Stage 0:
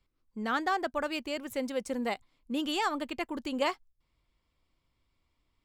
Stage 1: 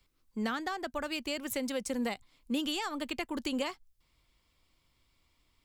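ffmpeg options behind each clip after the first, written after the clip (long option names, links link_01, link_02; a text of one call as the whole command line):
ffmpeg -i in.wav -filter_complex "[0:a]highshelf=frequency=2300:gain=8,acrossover=split=220[link_01][link_02];[link_02]acompressor=threshold=-35dB:ratio=10[link_03];[link_01][link_03]amix=inputs=2:normalize=0,volume=3dB" out.wav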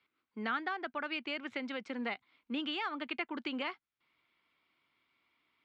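ffmpeg -i in.wav -af "highpass=260,equalizer=frequency=530:width_type=q:width=4:gain=-6,equalizer=frequency=1400:width_type=q:width=4:gain=6,equalizer=frequency=2200:width_type=q:width=4:gain=5,lowpass=frequency=3600:width=0.5412,lowpass=frequency=3600:width=1.3066,volume=-2dB" out.wav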